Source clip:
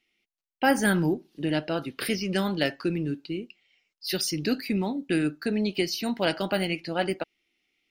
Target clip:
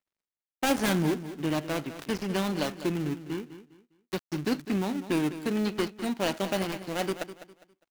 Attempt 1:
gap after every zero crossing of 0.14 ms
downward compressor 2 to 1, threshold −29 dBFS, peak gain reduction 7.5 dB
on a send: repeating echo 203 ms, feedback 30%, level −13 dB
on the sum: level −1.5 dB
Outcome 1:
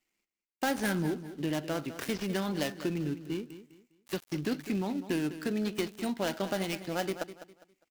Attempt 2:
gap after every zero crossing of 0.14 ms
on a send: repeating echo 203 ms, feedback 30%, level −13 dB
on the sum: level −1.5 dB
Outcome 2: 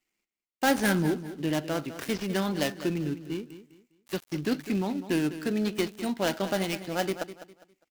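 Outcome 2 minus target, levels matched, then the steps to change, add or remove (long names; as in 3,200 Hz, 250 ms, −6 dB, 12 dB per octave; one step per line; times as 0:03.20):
gap after every zero crossing: distortion −4 dB
change: gap after every zero crossing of 0.28 ms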